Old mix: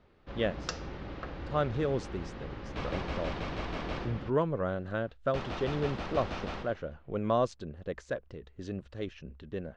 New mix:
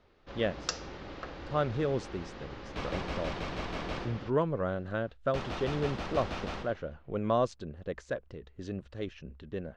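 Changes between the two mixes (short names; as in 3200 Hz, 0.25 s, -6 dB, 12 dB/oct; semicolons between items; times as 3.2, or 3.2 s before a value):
first sound: add tone controls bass -6 dB, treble +7 dB; second sound: remove air absorption 57 m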